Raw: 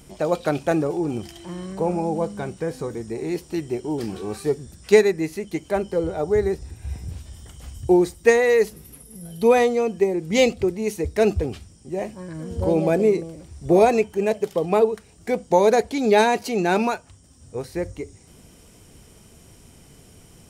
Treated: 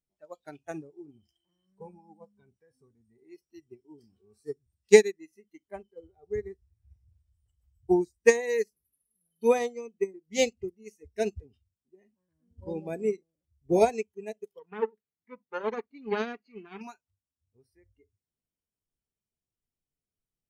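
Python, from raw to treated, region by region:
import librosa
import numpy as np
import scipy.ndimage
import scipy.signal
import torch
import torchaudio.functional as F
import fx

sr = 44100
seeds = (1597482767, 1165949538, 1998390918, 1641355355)

y = fx.chain(x, sr, fx.lower_of_two(delay_ms=0.46),
    fx.bandpass_edges(low_hz=110.0, high_hz=3000.0), at=(14.59, 16.81))
y = fx.noise_reduce_blind(y, sr, reduce_db=16)
y = fx.dynamic_eq(y, sr, hz=6300.0, q=1.6, threshold_db=-51.0, ratio=4.0, max_db=7)
y = fx.upward_expand(y, sr, threshold_db=-29.0, expansion=2.5)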